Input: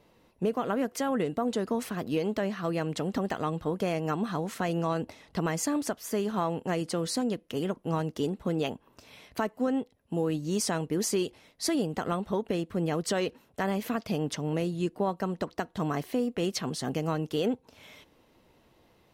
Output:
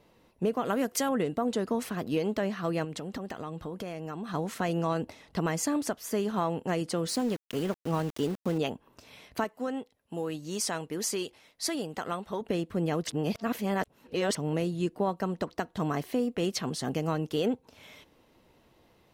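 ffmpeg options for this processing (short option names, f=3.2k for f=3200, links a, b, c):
-filter_complex "[0:a]asettb=1/sr,asplit=3[a][b][c];[a]atrim=end=0.654[d];[b]atrim=start=0.65:end=1.09,asetpts=PTS-STARTPTS,afade=t=in:d=0.004:c=qsin,afade=t=out:st=0.436:d=0.004:c=qsin,highshelf=f=3.6k:g=9[e];[c]atrim=start=1.086[f];[d][e]acrossfade=d=0.004:c1=hsin:c2=qsin[g];[g][f]acrossfade=d=0.004:c1=qsin:c2=hsin,asettb=1/sr,asplit=3[h][i][j];[h]atrim=end=2.844[k];[i]atrim=start=2.84:end=4.34,asetpts=PTS-STARTPTS,afade=t=in:d=0.004:c=qsin,afade=t=out:st=1.496:d=0.004:c=qsin,acompressor=threshold=-34dB:ratio=4:attack=3.2:release=140:knee=1:detection=peak[l];[j]atrim=start=4.336[m];[k][l]acrossfade=d=0.004:c1=hsin:c2=qsin[n];[n][m]acrossfade=d=0.004:c1=qsin:c2=hsin,asettb=1/sr,asplit=3[o][p][q];[o]atrim=end=7.084[r];[p]atrim=start=7.08:end=8.58,asetpts=PTS-STARTPTS,afade=t=in:d=0.004:c=qsin,afade=t=out:st=1.496:d=0.004:c=qsin,aeval=exprs='val(0)*gte(abs(val(0)),0.0112)':c=same[s];[q]atrim=start=8.576[t];[r][s]acrossfade=d=0.004:c1=hsin:c2=qsin[u];[u][t]acrossfade=d=0.004:c1=qsin:c2=hsin,asettb=1/sr,asplit=3[v][w][x];[v]atrim=end=9.444[y];[w]atrim=start=9.44:end=12.41,asetpts=PTS-STARTPTS,afade=t=in:d=0.004:c=qsin,afade=t=out:st=2.966:d=0.004:c=qsin,lowshelf=f=450:g=-9[z];[x]atrim=start=12.406[aa];[y][z]acrossfade=d=0.004:c1=hsin:c2=qsin[ab];[ab][aa]acrossfade=d=0.004:c1=qsin:c2=hsin,asplit=3[ac][ad][ae];[ac]atrim=end=13.072[af];[ad]atrim=start=13.068:end=14.352,asetpts=PTS-STARTPTS,areverse[ag];[ae]atrim=start=14.348[ah];[af][ag]acrossfade=d=0.004:c1=hsin:c2=hsin[ai];[ai][ah]acrossfade=d=0.004:c1=hsin:c2=hsin"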